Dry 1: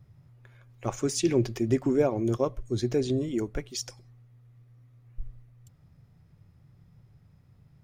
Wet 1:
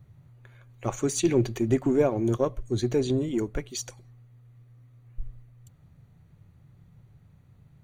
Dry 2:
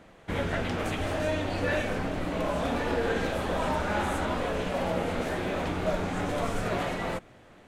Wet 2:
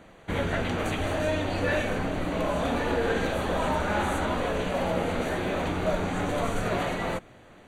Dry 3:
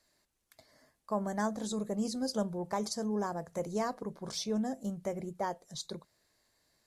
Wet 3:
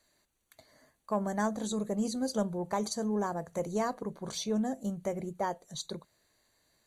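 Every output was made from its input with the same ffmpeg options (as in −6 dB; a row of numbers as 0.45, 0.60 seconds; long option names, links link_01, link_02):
-filter_complex "[0:a]asplit=2[link_01][link_02];[link_02]aeval=exprs='clip(val(0),-1,0.0355)':channel_layout=same,volume=-11dB[link_03];[link_01][link_03]amix=inputs=2:normalize=0,asuperstop=centerf=5200:order=12:qfactor=6.6"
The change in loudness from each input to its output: +1.5, +2.0, +2.0 LU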